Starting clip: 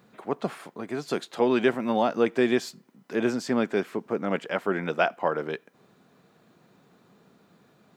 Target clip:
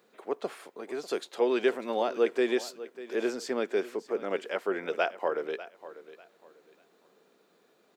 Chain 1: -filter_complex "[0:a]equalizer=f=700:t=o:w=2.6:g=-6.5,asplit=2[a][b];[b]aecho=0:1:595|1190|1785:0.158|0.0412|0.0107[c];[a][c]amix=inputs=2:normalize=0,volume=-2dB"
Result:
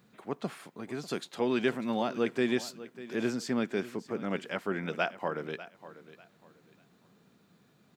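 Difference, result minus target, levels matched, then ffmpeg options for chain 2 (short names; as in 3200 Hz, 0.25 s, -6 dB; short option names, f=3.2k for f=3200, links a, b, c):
500 Hz band -2.5 dB
-filter_complex "[0:a]highpass=f=430:t=q:w=2,equalizer=f=700:t=o:w=2.6:g=-6.5,asplit=2[a][b];[b]aecho=0:1:595|1190|1785:0.158|0.0412|0.0107[c];[a][c]amix=inputs=2:normalize=0,volume=-2dB"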